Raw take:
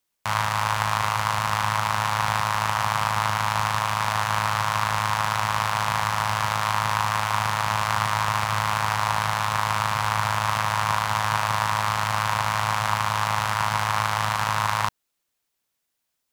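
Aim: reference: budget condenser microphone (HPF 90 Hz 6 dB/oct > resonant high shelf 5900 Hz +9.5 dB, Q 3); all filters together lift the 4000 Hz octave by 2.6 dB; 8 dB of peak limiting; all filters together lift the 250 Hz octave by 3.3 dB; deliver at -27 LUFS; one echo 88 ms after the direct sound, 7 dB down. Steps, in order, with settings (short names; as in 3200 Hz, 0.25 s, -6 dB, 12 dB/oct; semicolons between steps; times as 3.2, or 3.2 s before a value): bell 250 Hz +5.5 dB; bell 4000 Hz +8.5 dB; limiter -9 dBFS; HPF 90 Hz 6 dB/oct; resonant high shelf 5900 Hz +9.5 dB, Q 3; echo 88 ms -7 dB; gain -3.5 dB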